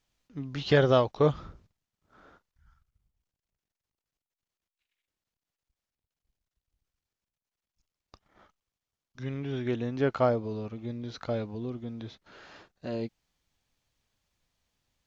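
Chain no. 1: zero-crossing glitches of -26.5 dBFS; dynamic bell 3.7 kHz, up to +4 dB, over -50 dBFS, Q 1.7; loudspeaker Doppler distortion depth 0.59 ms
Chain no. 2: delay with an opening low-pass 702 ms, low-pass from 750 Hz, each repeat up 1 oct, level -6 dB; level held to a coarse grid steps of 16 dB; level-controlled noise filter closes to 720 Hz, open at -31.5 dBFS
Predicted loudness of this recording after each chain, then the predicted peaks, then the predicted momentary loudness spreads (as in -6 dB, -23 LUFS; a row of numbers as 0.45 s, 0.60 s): -31.5 LUFS, -38.0 LUFS; -8.5 dBFS, -21.5 dBFS; 10 LU, 18 LU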